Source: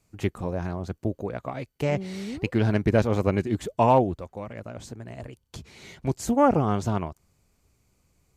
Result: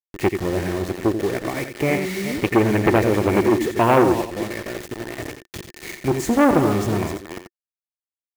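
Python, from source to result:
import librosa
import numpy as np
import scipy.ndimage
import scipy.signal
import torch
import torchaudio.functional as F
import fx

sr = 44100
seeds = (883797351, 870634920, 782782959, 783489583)

p1 = fx.reverse_delay(x, sr, ms=211, wet_db=-11.5)
p2 = fx.peak_eq(p1, sr, hz=2200.0, db=10.0, octaves=0.43)
p3 = fx.quant_dither(p2, sr, seeds[0], bits=6, dither='none')
p4 = fx.small_body(p3, sr, hz=(350.0, 1800.0), ring_ms=35, db=12)
p5 = p4 + fx.echo_single(p4, sr, ms=87, db=-9.0, dry=0)
p6 = fx.transformer_sat(p5, sr, knee_hz=1000.0)
y = p6 * 10.0 ** (3.5 / 20.0)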